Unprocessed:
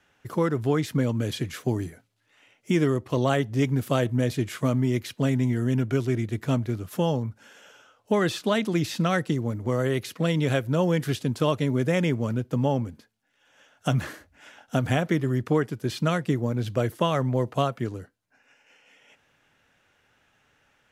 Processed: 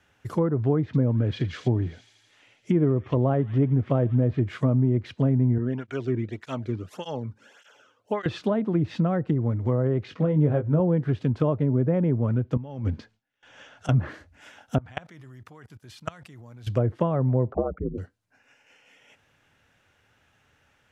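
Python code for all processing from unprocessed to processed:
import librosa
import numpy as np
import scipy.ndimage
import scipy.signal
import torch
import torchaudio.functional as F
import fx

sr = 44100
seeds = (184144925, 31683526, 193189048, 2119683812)

y = fx.chain(x, sr, fx.lowpass(hz=5900.0, slope=12),
    fx.echo_wet_highpass(ms=82, feedback_pct=79, hz=2700.0, wet_db=-10.0), at=(0.85, 4.39))
y = fx.chain(y, sr, fx.high_shelf(hz=9800.0, db=-10.5),
    fx.flanger_cancel(hz=1.7, depth_ms=1.6), at=(5.58, 8.26))
y = fx.chain(y, sr, fx.air_absorb(metres=100.0),
    fx.doubler(ms=20.0, db=-6.5), at=(10.04, 10.8))
y = fx.chain(y, sr, fx.gate_hold(open_db=-55.0, close_db=-65.0, hold_ms=71.0, range_db=-21, attack_ms=1.4, release_ms=100.0),
    fx.lowpass(hz=5400.0, slope=12),
    fx.over_compress(threshold_db=-35.0, ratio=-1.0), at=(12.57, 13.89))
y = fx.chain(y, sr, fx.low_shelf_res(hz=600.0, db=-6.5, q=1.5),
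    fx.level_steps(step_db=24), at=(14.78, 16.67))
y = fx.chain(y, sr, fx.envelope_sharpen(power=3.0),
    fx.ring_mod(carrier_hz=62.0),
    fx.band_squash(depth_pct=70), at=(17.52, 17.98))
y = fx.env_lowpass_down(y, sr, base_hz=820.0, full_db=-20.0)
y = fx.peak_eq(y, sr, hz=85.0, db=7.5, octaves=1.2)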